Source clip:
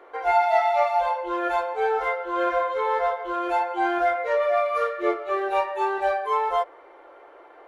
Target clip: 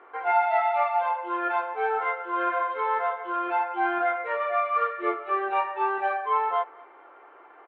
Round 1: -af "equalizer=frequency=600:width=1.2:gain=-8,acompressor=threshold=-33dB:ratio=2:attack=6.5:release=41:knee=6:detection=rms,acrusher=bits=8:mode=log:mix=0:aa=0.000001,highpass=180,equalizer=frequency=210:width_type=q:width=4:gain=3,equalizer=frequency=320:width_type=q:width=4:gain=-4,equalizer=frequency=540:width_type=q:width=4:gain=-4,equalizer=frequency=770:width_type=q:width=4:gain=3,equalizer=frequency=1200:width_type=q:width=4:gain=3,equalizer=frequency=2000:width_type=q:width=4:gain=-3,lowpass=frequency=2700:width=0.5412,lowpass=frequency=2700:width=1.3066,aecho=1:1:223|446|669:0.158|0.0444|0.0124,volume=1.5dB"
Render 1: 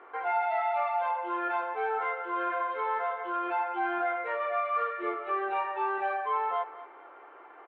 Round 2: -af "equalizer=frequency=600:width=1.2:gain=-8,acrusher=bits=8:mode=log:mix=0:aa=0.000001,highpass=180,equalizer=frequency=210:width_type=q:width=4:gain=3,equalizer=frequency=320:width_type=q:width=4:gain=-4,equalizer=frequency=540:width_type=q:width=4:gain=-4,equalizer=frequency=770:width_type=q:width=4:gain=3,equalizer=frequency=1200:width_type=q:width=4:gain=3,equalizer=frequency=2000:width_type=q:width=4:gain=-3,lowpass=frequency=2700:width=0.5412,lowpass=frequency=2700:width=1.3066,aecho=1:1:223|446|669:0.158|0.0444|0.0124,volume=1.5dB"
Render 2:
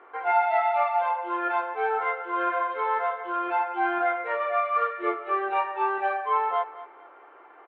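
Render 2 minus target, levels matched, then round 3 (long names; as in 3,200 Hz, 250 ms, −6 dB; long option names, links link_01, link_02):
echo-to-direct +9 dB
-af "equalizer=frequency=600:width=1.2:gain=-8,acrusher=bits=8:mode=log:mix=0:aa=0.000001,highpass=180,equalizer=frequency=210:width_type=q:width=4:gain=3,equalizer=frequency=320:width_type=q:width=4:gain=-4,equalizer=frequency=540:width_type=q:width=4:gain=-4,equalizer=frequency=770:width_type=q:width=4:gain=3,equalizer=frequency=1200:width_type=q:width=4:gain=3,equalizer=frequency=2000:width_type=q:width=4:gain=-3,lowpass=frequency=2700:width=0.5412,lowpass=frequency=2700:width=1.3066,aecho=1:1:223|446:0.0562|0.0157,volume=1.5dB"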